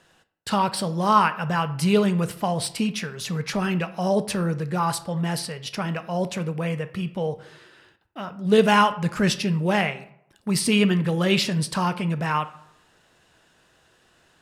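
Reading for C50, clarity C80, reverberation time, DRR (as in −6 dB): 15.0 dB, 18.5 dB, 0.75 s, 11.0 dB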